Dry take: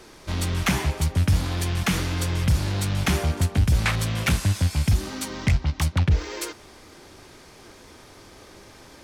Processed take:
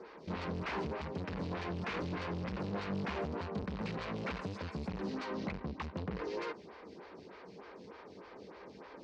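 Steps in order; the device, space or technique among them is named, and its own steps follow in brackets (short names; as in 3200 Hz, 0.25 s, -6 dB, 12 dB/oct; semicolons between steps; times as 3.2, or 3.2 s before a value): vibe pedal into a guitar amplifier (photocell phaser 3.3 Hz; tube stage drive 36 dB, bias 0.6; speaker cabinet 86–4300 Hz, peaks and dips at 110 Hz -8 dB, 190 Hz +9 dB, 460 Hz +8 dB, 1000 Hz +4 dB, 3400 Hz -6 dB)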